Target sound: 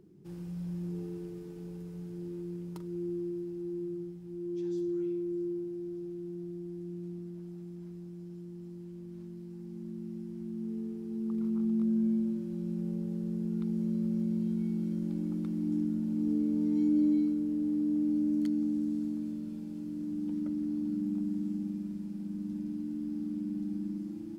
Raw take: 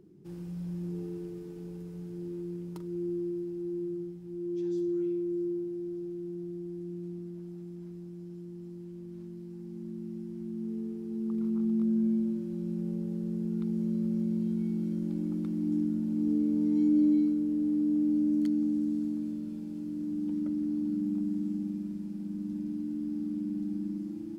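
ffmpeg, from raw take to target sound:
ffmpeg -i in.wav -af "equalizer=frequency=320:width=1.5:gain=-2.5" out.wav

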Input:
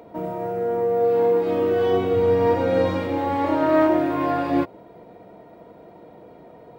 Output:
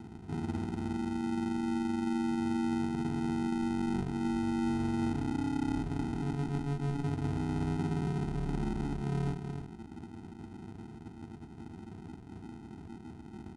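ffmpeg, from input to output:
ffmpeg -i in.wav -filter_complex "[0:a]highpass=110,asplit=2[link_01][link_02];[link_02]adelay=36,volume=-11dB[link_03];[link_01][link_03]amix=inputs=2:normalize=0,asplit=2[link_04][link_05];[link_05]adelay=174.9,volume=-20dB,highshelf=frequency=4000:gain=-3.94[link_06];[link_04][link_06]amix=inputs=2:normalize=0,acrusher=samples=39:mix=1:aa=0.000001,highshelf=frequency=2100:gain=-10.5,bandreject=frequency=1000:width=6.3,asetrate=22050,aresample=44100,highshelf=frequency=7300:gain=-5.5,areverse,acompressor=threshold=-32dB:ratio=4,areverse" out.wav

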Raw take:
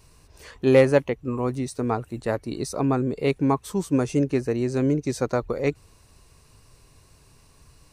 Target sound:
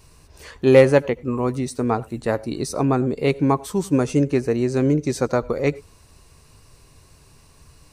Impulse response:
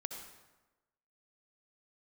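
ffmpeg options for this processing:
-filter_complex "[0:a]asplit=2[link_01][link_02];[1:a]atrim=start_sample=2205,atrim=end_sample=4410,adelay=13[link_03];[link_02][link_03]afir=irnorm=-1:irlink=0,volume=-13.5dB[link_04];[link_01][link_04]amix=inputs=2:normalize=0,volume=3.5dB"

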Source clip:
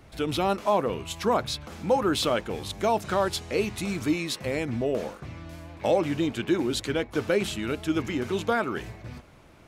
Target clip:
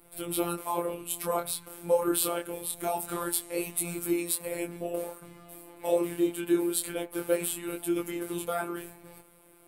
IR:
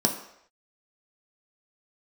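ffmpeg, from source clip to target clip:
-filter_complex "[0:a]flanger=delay=19.5:depth=7.6:speed=0.25,asplit=2[link_01][link_02];[1:a]atrim=start_sample=2205,asetrate=66150,aresample=44100[link_03];[link_02][link_03]afir=irnorm=-1:irlink=0,volume=-18dB[link_04];[link_01][link_04]amix=inputs=2:normalize=0,afftfilt=real='hypot(re,im)*cos(PI*b)':imag='0':win_size=1024:overlap=0.75,aexciter=amount=15.2:drive=3:freq=8400,volume=-2dB"

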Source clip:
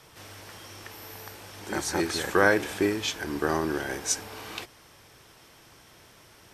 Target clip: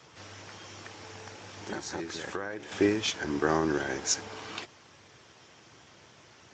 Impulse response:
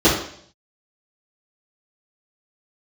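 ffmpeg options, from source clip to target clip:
-filter_complex "[0:a]asettb=1/sr,asplit=3[link_01][link_02][link_03];[link_01]atrim=end=1.474[link_04];[link_02]atrim=start=1.47:end=2.72,asetpts=PTS-STARTPTS,afade=type=in:duration=0.004:curve=qsin,afade=type=out:start_time=1.246:duration=0.004:curve=qsin,acompressor=threshold=-32dB:ratio=12[link_05];[link_03]atrim=start=2.716[link_06];[link_04][link_05]acrossfade=duration=0.004:curve1=hsin:curve2=qsin[link_07];[link_07][link_06]acrossfade=duration=0.004:curve1=qsin:curve2=hsin" -ar 16000 -c:a libspeex -b:a 17k

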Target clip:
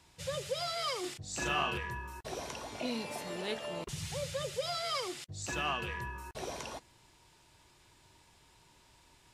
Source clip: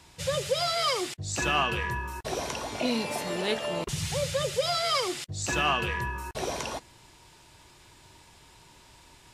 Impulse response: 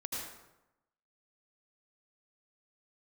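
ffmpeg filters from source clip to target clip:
-filter_complex "[0:a]asettb=1/sr,asplit=3[link_01][link_02][link_03];[link_01]atrim=end=1.004[link_04];[link_02]atrim=start=1:end=1.78,asetpts=PTS-STARTPTS,afade=type=in:duration=0.004:curve=qsin,afade=type=out:start_time=0.776:duration=0.004:curve=qsin,asplit=2[link_05][link_06];[link_06]adelay=36,volume=-2.5dB[link_07];[link_05][link_07]amix=inputs=2:normalize=0,atrim=end_sample=34398[link_08];[link_03]atrim=start=1.776[link_09];[link_04][link_08]acrossfade=duration=0.004:curve1=hsin:curve2=qsin[link_10];[link_10][link_09]acrossfade=duration=0.004:curve1=qsin:curve2=hsin,volume=-8.5dB"

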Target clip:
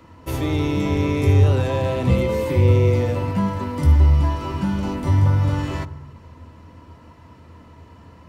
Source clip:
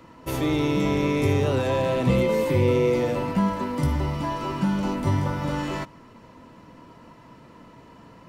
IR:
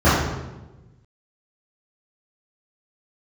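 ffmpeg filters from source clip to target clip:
-filter_complex "[0:a]asplit=2[link_01][link_02];[link_02]lowshelf=frequency=130:width_type=q:width=3:gain=10.5[link_03];[1:a]atrim=start_sample=2205,asetrate=48510,aresample=44100[link_04];[link_03][link_04]afir=irnorm=-1:irlink=0,volume=-40dB[link_05];[link_01][link_05]amix=inputs=2:normalize=0"

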